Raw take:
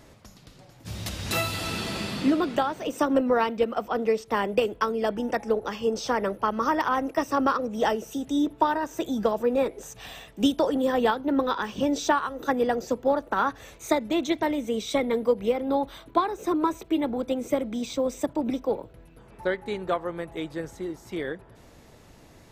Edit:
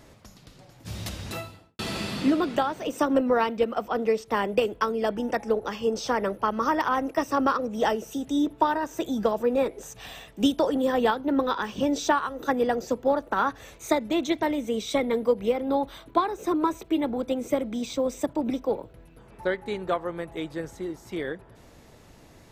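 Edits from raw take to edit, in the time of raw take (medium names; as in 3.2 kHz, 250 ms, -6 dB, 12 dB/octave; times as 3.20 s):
0.95–1.79 s: studio fade out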